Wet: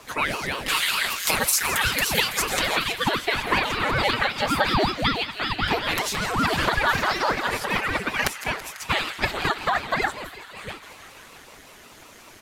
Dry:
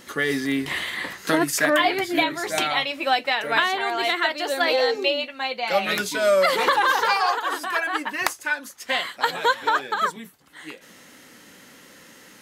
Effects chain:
0:00.68–0:02.42: spectral tilt +4 dB per octave
in parallel at −8 dB: slack as between gear wheels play −37 dBFS
on the sum: downward compressor, threshold −19 dBFS, peak gain reduction 11.5 dB
comb filter 5.7 ms, depth 88%
on a send: delay with a high-pass on its return 165 ms, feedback 81%, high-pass 1,600 Hz, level −13 dB
on the sum: ring modulator whose carrier an LFO sweeps 470 Hz, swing 80%, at 5.3 Hz

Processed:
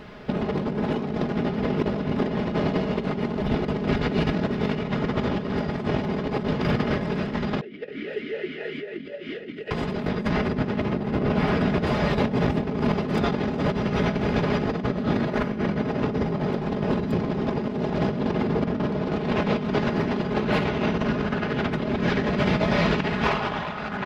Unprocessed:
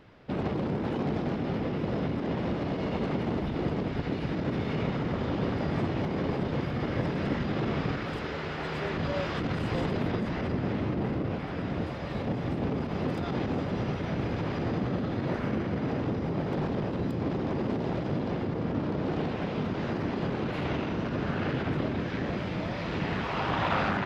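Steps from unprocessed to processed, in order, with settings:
comb filter 4.8 ms, depth 55%
compressor whose output falls as the input rises −32 dBFS, ratio −0.5
0:07.61–0:09.71: formant filter swept between two vowels e-i 3.9 Hz
level +8.5 dB

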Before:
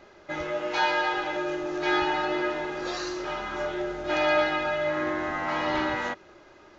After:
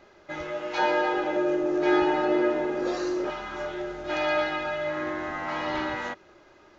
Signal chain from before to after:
0:00.78–0:03.30: octave-band graphic EQ 250/500/4,000 Hz +9/+8/−4 dB
level −2.5 dB

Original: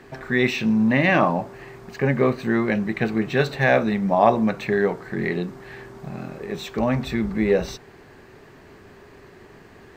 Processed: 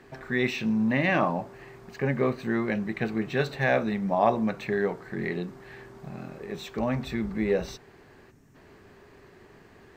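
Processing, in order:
gain on a spectral selection 0:08.31–0:08.55, 320–5,200 Hz −12 dB
level −6 dB

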